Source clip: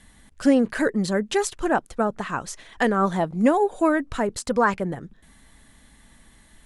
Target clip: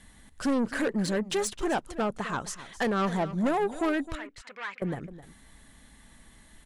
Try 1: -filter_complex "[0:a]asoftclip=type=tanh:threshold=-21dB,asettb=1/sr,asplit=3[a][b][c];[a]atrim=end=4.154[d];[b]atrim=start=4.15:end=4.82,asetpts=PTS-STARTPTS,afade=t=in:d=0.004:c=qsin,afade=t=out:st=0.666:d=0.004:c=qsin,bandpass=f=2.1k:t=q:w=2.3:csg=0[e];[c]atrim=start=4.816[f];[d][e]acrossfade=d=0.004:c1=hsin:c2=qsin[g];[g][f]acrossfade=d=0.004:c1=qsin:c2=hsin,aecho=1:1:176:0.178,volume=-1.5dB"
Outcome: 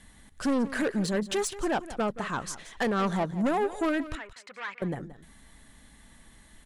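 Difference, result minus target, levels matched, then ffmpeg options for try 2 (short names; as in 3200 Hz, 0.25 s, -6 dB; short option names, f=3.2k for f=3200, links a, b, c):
echo 85 ms early
-filter_complex "[0:a]asoftclip=type=tanh:threshold=-21dB,asettb=1/sr,asplit=3[a][b][c];[a]atrim=end=4.154[d];[b]atrim=start=4.15:end=4.82,asetpts=PTS-STARTPTS,afade=t=in:d=0.004:c=qsin,afade=t=out:st=0.666:d=0.004:c=qsin,bandpass=f=2.1k:t=q:w=2.3:csg=0[e];[c]atrim=start=4.816[f];[d][e]acrossfade=d=0.004:c1=hsin:c2=qsin[g];[g][f]acrossfade=d=0.004:c1=qsin:c2=hsin,aecho=1:1:261:0.178,volume=-1.5dB"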